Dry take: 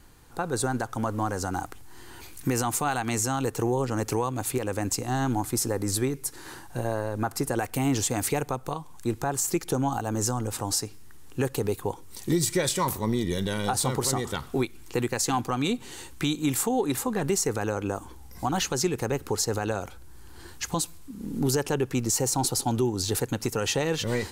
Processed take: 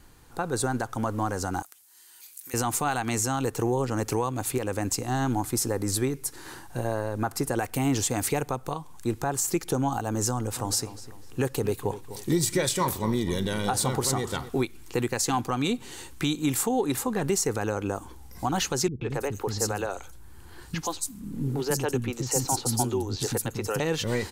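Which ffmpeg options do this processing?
ffmpeg -i in.wav -filter_complex "[0:a]asettb=1/sr,asplit=3[link_01][link_02][link_03];[link_01]atrim=end=1.624[link_04];[link_02]atrim=start=1.62:end=2.54,asetpts=PTS-STARTPTS,afade=type=in:duration=0.004:curve=qsin,afade=type=out:start_time=0.916:duration=0.004:curve=qsin,aderivative[link_05];[link_03]atrim=start=2.536[link_06];[link_04][link_05]acrossfade=duration=0.004:curve1=hsin:curve2=qsin[link_07];[link_07][link_06]acrossfade=duration=0.004:curve1=qsin:curve2=hsin,asplit=3[link_08][link_09][link_10];[link_08]afade=type=out:start_time=10.55:duration=0.02[link_11];[link_09]asplit=2[link_12][link_13];[link_13]adelay=251,lowpass=frequency=3500:poles=1,volume=-13.5dB,asplit=2[link_14][link_15];[link_15]adelay=251,lowpass=frequency=3500:poles=1,volume=0.39,asplit=2[link_16][link_17];[link_17]adelay=251,lowpass=frequency=3500:poles=1,volume=0.39,asplit=2[link_18][link_19];[link_19]adelay=251,lowpass=frequency=3500:poles=1,volume=0.39[link_20];[link_12][link_14][link_16][link_18][link_20]amix=inputs=5:normalize=0,afade=type=in:start_time=10.55:duration=0.02,afade=type=out:start_time=14.48:duration=0.02[link_21];[link_10]afade=type=in:start_time=14.48:duration=0.02[link_22];[link_11][link_21][link_22]amix=inputs=3:normalize=0,asettb=1/sr,asplit=3[link_23][link_24][link_25];[link_23]atrim=end=18.884[link_26];[link_24]atrim=start=18.88:end=23.8,asetpts=PTS-STARTPTS,afade=type=in:duration=0.004:curve=qsin,afade=type=out:start_time=4.916:duration=0.004:curve=qsin,acrossover=split=280|4700[link_27][link_28][link_29];[link_28]adelay=130[link_30];[link_29]adelay=220[link_31];[link_27][link_30][link_31]amix=inputs=3:normalize=0,atrim=end_sample=216972[link_32];[link_25]atrim=start=23.796[link_33];[link_26][link_32]acrossfade=duration=0.004:curve1=hsin:curve2=qsin[link_34];[link_34][link_33]acrossfade=duration=0.004:curve1=qsin:curve2=hsin" out.wav

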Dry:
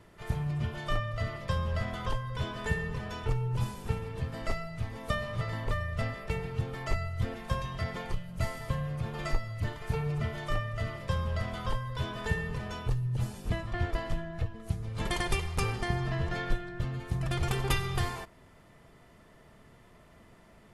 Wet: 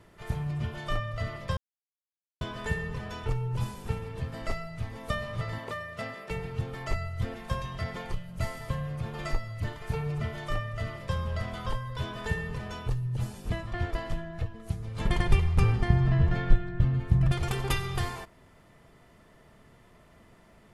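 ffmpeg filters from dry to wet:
ffmpeg -i in.wav -filter_complex "[0:a]asettb=1/sr,asplit=3[link_01][link_02][link_03];[link_01]atrim=end=5.584[link_04];[link_02]atrim=start=5.58:end=6.31,asetpts=PTS-STARTPTS,afade=type=in:duration=0.004:curve=qsin,afade=type=out:start_time=0.726:duration=0.004:curve=qsin,highpass=210[link_05];[link_03]atrim=start=6.306[link_06];[link_04][link_05]acrossfade=duration=0.004:curve1=hsin:curve2=qsin[link_07];[link_07][link_06]acrossfade=duration=0.004:curve1=qsin:curve2=hsin,asettb=1/sr,asplit=3[link_08][link_09][link_10];[link_08]atrim=end=15.054[link_11];[link_09]atrim=start=15.05:end=17.32,asetpts=PTS-STARTPTS,afade=type=in:duration=0.004:curve=qsin,afade=type=out:start_time=2.266:duration=0.004:curve=qsin,bass=frequency=250:gain=10,treble=frequency=4000:gain=-8[link_12];[link_10]atrim=start=17.316[link_13];[link_11][link_12]acrossfade=duration=0.004:curve1=hsin:curve2=qsin[link_14];[link_14][link_13]acrossfade=duration=0.004:curve1=qsin:curve2=hsin,asplit=3[link_15][link_16][link_17];[link_15]atrim=end=1.57,asetpts=PTS-STARTPTS,afade=type=out:start_time=1.566:duration=0.004:curve=hsin[link_18];[link_16]atrim=start=1.57:end=2.41,asetpts=PTS-STARTPTS,volume=0[link_19];[link_17]atrim=start=2.41,asetpts=PTS-STARTPTS,afade=type=in:duration=0.004:curve=hsin[link_20];[link_18][link_19][link_20]concat=n=3:v=0:a=1" out.wav

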